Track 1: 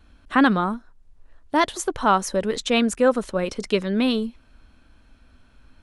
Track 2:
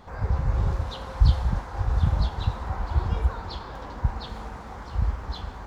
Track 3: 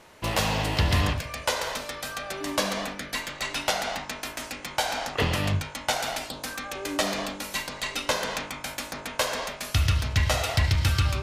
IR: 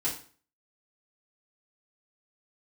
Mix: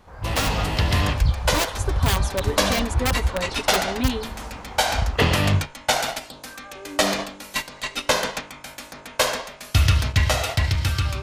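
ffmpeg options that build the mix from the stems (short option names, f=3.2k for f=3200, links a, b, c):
-filter_complex "[0:a]aecho=1:1:7.2:0.77,aeval=exprs='(mod(3.16*val(0)+1,2)-1)/3.16':c=same,volume=-12.5dB[a];[1:a]volume=-5dB[b];[2:a]agate=range=-10dB:threshold=-29dB:ratio=16:detection=peak,volume=0.5dB[c];[a][b][c]amix=inputs=3:normalize=0,dynaudnorm=f=140:g=17:m=6dB"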